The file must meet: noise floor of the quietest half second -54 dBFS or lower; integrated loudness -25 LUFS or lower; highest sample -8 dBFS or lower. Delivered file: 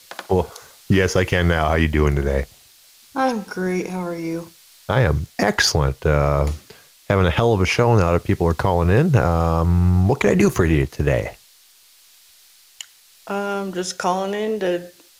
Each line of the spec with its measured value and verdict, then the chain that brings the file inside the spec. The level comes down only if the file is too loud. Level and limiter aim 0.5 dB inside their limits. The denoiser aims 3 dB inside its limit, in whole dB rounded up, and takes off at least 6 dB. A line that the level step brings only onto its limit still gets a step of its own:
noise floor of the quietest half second -52 dBFS: fail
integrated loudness -19.5 LUFS: fail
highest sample -5.5 dBFS: fail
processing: trim -6 dB

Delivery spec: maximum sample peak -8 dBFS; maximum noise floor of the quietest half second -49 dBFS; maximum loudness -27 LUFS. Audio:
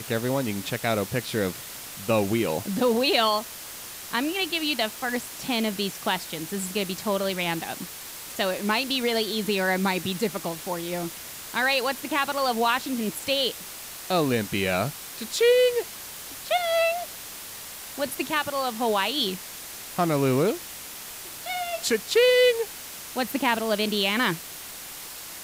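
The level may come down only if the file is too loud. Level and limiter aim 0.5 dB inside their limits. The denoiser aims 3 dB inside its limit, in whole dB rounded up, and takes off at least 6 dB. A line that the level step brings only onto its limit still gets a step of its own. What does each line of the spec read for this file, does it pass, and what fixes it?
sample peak -10.0 dBFS: pass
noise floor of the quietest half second -39 dBFS: fail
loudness -25.5 LUFS: fail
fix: noise reduction 11 dB, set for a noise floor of -39 dBFS; trim -2 dB

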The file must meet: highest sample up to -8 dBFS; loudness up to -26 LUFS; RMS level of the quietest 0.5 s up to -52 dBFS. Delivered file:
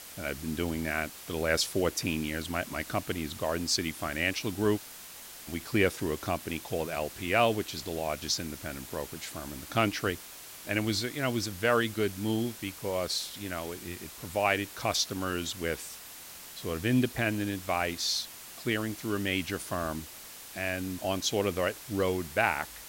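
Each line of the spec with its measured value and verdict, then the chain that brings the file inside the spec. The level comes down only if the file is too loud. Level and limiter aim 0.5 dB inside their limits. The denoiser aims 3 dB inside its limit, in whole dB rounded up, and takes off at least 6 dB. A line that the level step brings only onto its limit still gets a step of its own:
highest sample -10.0 dBFS: pass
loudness -31.0 LUFS: pass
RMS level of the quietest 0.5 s -47 dBFS: fail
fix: noise reduction 8 dB, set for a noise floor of -47 dBFS

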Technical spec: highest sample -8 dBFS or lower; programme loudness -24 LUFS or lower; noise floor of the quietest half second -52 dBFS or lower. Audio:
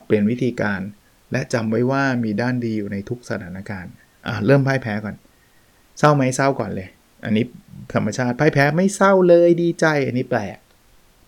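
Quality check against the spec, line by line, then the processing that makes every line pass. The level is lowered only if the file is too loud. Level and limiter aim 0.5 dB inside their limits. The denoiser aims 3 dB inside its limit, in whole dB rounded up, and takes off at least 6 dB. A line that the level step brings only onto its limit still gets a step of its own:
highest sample -2.5 dBFS: fail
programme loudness -19.0 LUFS: fail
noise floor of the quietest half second -54 dBFS: pass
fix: trim -5.5 dB; peak limiter -8.5 dBFS

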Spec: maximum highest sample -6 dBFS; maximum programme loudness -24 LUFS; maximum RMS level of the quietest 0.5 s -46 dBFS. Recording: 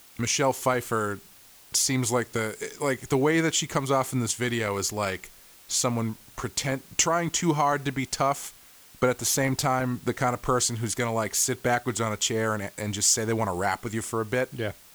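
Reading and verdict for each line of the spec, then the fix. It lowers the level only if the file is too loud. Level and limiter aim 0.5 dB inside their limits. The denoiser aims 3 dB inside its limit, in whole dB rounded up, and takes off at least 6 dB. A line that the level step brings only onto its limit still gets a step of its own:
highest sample -9.0 dBFS: pass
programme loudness -26.0 LUFS: pass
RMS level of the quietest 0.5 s -52 dBFS: pass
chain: none needed

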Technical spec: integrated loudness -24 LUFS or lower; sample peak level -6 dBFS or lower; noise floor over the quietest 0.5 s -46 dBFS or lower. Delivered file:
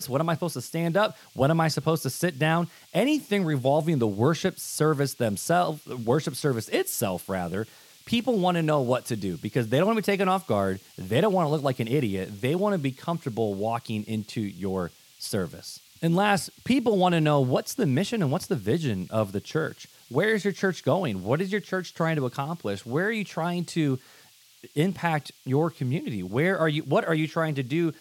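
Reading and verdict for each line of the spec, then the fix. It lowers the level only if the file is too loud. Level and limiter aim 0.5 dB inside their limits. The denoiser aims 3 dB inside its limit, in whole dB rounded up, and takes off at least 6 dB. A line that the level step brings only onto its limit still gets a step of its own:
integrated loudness -26.5 LUFS: pass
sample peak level -7.5 dBFS: pass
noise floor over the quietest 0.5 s -55 dBFS: pass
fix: none needed

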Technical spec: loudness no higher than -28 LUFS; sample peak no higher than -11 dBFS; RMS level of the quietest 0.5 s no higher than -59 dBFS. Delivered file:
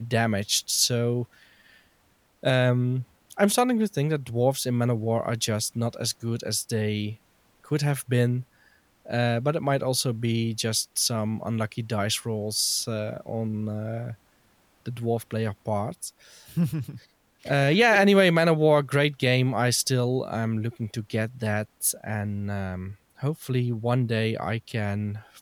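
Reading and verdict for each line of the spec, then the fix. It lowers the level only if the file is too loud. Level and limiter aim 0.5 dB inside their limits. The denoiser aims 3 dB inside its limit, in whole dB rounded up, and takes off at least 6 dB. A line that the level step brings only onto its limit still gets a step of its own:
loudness -25.5 LUFS: fail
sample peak -8.5 dBFS: fail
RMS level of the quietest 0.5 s -64 dBFS: pass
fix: trim -3 dB

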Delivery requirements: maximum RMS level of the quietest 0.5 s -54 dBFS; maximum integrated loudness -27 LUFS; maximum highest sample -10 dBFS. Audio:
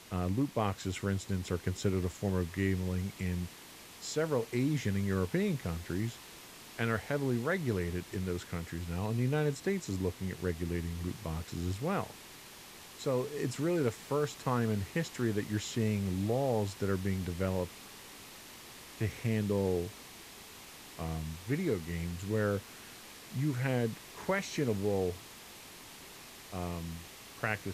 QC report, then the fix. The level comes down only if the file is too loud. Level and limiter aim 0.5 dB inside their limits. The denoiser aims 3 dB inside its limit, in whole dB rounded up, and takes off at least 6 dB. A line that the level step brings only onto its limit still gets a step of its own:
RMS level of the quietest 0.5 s -52 dBFS: fail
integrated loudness -34.5 LUFS: pass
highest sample -16.0 dBFS: pass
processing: noise reduction 6 dB, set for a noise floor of -52 dBFS

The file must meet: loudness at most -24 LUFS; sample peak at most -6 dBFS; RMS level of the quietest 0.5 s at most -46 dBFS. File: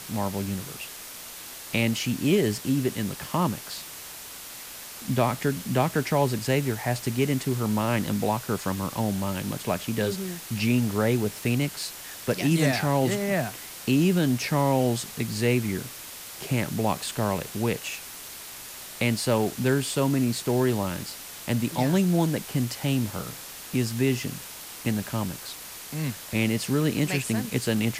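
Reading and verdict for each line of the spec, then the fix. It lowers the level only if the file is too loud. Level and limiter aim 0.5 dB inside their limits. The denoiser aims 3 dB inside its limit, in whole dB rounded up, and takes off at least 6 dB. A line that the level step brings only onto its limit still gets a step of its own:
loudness -26.5 LUFS: pass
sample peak -8.5 dBFS: pass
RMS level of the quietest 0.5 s -41 dBFS: fail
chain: noise reduction 8 dB, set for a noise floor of -41 dBFS

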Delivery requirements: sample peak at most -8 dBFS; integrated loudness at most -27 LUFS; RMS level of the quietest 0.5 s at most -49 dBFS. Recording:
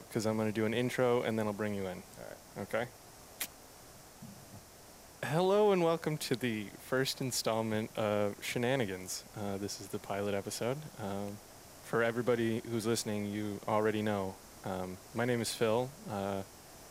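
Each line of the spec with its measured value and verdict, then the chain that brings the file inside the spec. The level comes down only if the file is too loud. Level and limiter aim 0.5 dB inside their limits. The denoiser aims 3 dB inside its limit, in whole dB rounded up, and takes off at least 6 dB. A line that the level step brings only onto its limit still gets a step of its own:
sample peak -17.0 dBFS: pass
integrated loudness -34.5 LUFS: pass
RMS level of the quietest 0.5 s -55 dBFS: pass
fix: none needed

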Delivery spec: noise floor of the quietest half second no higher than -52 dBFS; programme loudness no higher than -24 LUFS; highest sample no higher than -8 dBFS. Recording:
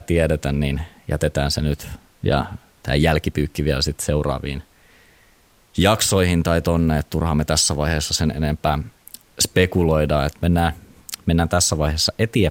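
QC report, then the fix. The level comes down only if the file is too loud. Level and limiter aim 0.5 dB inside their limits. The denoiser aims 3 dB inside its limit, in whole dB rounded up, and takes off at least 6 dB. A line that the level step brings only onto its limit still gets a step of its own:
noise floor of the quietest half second -55 dBFS: pass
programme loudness -20.0 LUFS: fail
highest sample -2.0 dBFS: fail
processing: trim -4.5 dB; peak limiter -8.5 dBFS

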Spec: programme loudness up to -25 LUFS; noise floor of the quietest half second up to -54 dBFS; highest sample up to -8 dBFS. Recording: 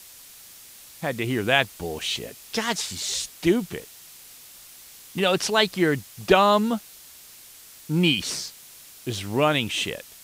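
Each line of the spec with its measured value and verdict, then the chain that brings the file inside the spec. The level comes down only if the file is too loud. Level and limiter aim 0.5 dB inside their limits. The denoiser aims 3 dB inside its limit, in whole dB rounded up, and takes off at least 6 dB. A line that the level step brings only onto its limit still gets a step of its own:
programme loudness -24.0 LUFS: fail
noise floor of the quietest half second -47 dBFS: fail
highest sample -4.5 dBFS: fail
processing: noise reduction 9 dB, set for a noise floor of -47 dBFS; trim -1.5 dB; peak limiter -8.5 dBFS

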